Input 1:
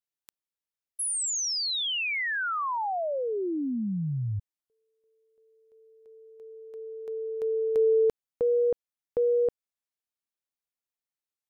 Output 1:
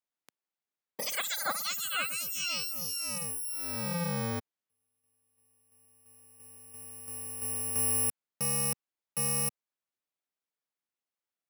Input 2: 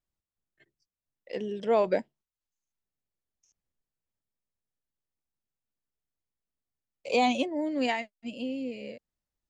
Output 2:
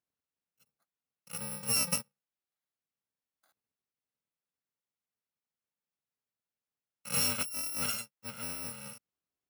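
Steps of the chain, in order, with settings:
samples in bit-reversed order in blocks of 128 samples
high-pass filter 170 Hz 12 dB per octave
high-shelf EQ 3,700 Hz −10 dB
level +2.5 dB

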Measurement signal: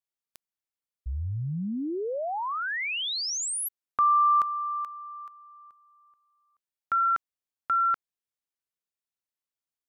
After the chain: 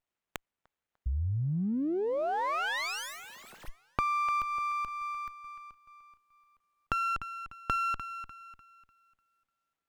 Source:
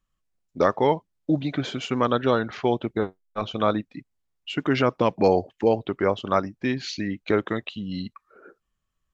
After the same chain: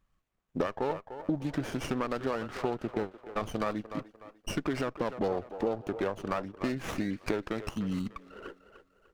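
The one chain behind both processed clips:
downward compressor 5 to 1, threshold −34 dBFS
on a send: delay with a band-pass on its return 298 ms, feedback 35%, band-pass 850 Hz, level −9.5 dB
on the sum: windowed peak hold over 9 samples
level +5 dB

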